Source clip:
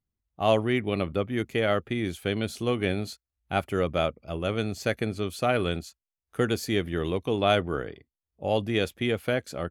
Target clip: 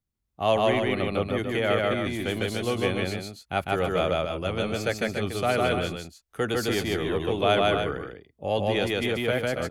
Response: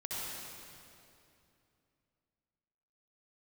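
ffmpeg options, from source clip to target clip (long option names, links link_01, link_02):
-filter_complex "[0:a]acrossover=split=400|1100[link_01][link_02][link_03];[link_01]asoftclip=type=tanh:threshold=-28dB[link_04];[link_04][link_02][link_03]amix=inputs=3:normalize=0,aecho=1:1:151.6|285.7:0.891|0.447"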